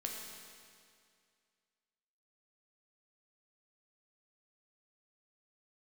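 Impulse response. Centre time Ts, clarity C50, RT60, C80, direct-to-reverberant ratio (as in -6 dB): 88 ms, 2.0 dB, 2.2 s, 3.0 dB, -0.5 dB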